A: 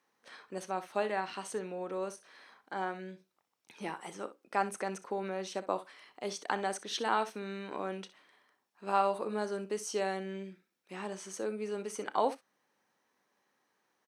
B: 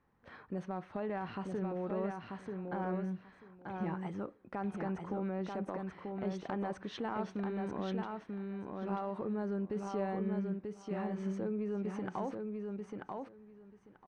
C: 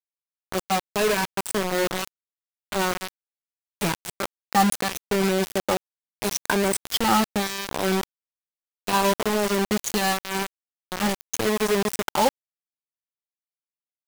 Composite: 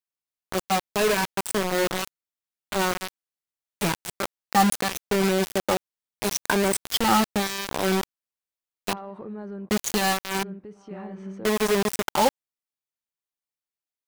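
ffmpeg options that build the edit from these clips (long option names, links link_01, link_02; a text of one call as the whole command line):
ffmpeg -i take0.wav -i take1.wav -i take2.wav -filter_complex "[1:a]asplit=2[link_01][link_02];[2:a]asplit=3[link_03][link_04][link_05];[link_03]atrim=end=8.932[link_06];[link_01]atrim=start=8.928:end=9.692[link_07];[link_04]atrim=start=9.688:end=10.432[link_08];[link_02]atrim=start=10.428:end=11.452[link_09];[link_05]atrim=start=11.448[link_10];[link_06][link_07]acrossfade=duration=0.004:curve1=hsin:curve2=hsin[link_11];[link_11][link_08]acrossfade=duration=0.004:curve1=hsin:curve2=hsin[link_12];[link_12][link_09]acrossfade=duration=0.004:curve1=hsin:curve2=hsin[link_13];[link_13][link_10]acrossfade=duration=0.004:curve1=hsin:curve2=hsin" out.wav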